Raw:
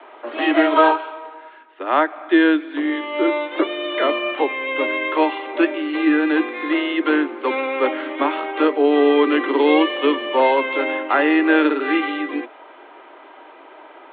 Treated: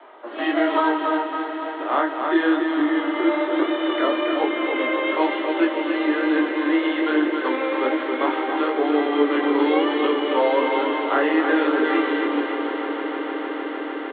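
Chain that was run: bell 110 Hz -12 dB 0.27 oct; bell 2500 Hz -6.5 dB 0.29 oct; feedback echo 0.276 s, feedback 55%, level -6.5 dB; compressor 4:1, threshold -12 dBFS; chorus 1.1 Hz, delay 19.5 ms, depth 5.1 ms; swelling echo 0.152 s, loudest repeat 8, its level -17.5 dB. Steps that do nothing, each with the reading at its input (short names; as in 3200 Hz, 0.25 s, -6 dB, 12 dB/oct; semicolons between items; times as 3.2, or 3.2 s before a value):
bell 110 Hz: input band starts at 240 Hz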